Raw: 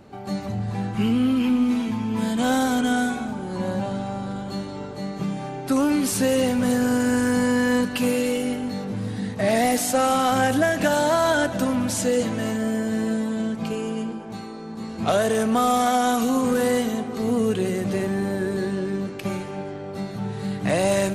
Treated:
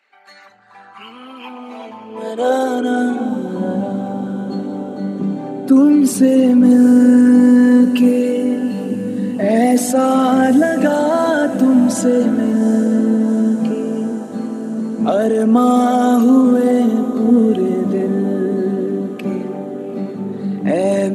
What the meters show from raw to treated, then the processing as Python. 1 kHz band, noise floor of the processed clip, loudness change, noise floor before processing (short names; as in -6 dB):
+3.5 dB, -37 dBFS, +8.5 dB, -35 dBFS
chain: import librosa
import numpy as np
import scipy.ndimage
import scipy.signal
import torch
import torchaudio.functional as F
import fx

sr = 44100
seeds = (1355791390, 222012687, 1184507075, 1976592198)

y = fx.envelope_sharpen(x, sr, power=1.5)
y = fx.filter_sweep_highpass(y, sr, from_hz=2100.0, to_hz=240.0, start_s=0.01, end_s=3.41, q=3.0)
y = fx.echo_diffused(y, sr, ms=798, feedback_pct=66, wet_db=-14.0)
y = F.gain(torch.from_numpy(y), 3.0).numpy()